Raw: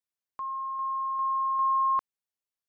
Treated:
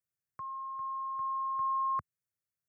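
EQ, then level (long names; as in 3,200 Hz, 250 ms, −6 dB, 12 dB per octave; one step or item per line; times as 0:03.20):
high-pass filter 88 Hz 24 dB per octave
low shelf with overshoot 300 Hz +13 dB, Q 1.5
phaser with its sweep stopped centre 890 Hz, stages 6
0.0 dB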